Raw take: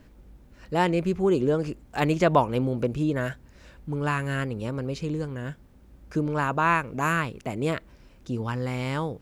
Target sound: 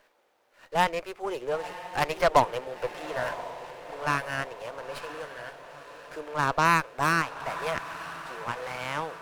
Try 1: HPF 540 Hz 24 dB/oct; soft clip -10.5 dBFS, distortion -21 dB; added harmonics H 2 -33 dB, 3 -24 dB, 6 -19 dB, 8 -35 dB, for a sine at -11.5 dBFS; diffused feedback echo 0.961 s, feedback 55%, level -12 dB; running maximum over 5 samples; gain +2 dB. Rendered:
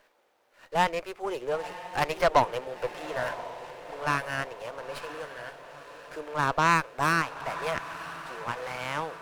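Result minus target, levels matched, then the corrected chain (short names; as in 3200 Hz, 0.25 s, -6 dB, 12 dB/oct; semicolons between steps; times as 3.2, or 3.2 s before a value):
soft clip: distortion +11 dB
HPF 540 Hz 24 dB/oct; soft clip -4 dBFS, distortion -32 dB; added harmonics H 2 -33 dB, 3 -24 dB, 6 -19 dB, 8 -35 dB, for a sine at -11.5 dBFS; diffused feedback echo 0.961 s, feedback 55%, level -12 dB; running maximum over 5 samples; gain +2 dB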